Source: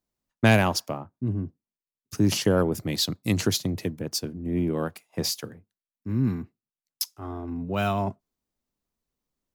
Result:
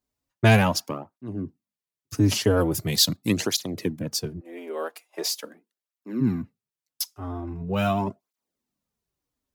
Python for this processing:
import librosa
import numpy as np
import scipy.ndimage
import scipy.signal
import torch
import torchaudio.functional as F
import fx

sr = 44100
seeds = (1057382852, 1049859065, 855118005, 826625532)

y = fx.high_shelf(x, sr, hz=3500.0, db=9.0, at=(2.61, 3.17))
y = fx.highpass(y, sr, hz=fx.line((4.39, 490.0), (6.2, 210.0)), slope=24, at=(4.39, 6.2), fade=0.02)
y = fx.flanger_cancel(y, sr, hz=0.42, depth_ms=6.2)
y = F.gain(torch.from_numpy(y), 4.0).numpy()